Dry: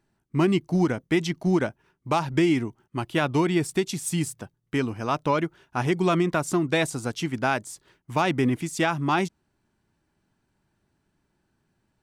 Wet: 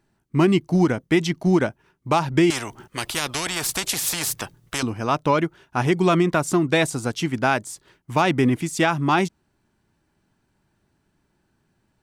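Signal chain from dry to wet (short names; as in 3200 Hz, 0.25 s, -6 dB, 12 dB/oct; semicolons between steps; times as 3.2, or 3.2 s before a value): 2.5–4.83 spectral compressor 4:1; gain +4 dB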